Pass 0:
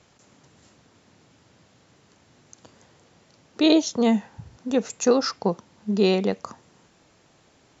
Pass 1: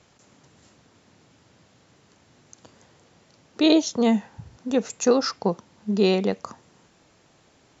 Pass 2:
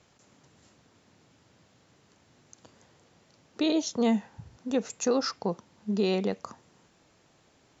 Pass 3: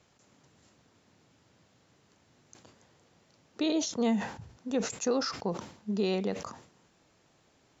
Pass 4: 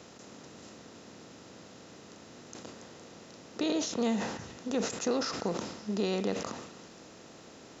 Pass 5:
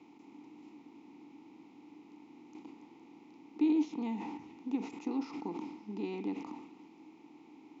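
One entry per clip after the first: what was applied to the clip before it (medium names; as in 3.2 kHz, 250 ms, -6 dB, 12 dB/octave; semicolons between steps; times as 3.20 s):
no audible change
peak limiter -12 dBFS, peak gain reduction 8 dB; trim -4.5 dB
decay stretcher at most 100 dB/s; trim -3 dB
spectral levelling over time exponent 0.6; repeats whose band climbs or falls 143 ms, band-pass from 1.6 kHz, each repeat 0.7 oct, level -10 dB; trim -3.5 dB
vowel filter u; trim +6 dB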